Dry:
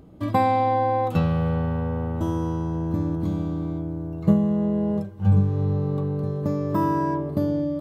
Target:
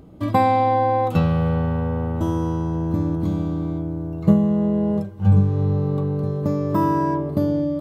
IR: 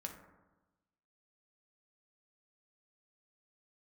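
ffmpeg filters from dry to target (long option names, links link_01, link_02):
-af "bandreject=frequency=1700:width=22,volume=3dB"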